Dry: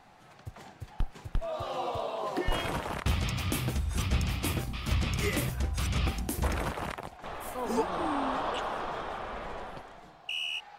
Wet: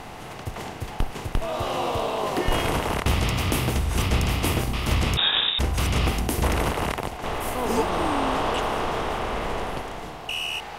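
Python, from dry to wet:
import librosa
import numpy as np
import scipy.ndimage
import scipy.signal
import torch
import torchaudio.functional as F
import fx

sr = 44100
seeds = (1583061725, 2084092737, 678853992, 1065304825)

y = fx.bin_compress(x, sr, power=0.6)
y = fx.freq_invert(y, sr, carrier_hz=3700, at=(5.17, 5.59))
y = y * 10.0 ** (3.5 / 20.0)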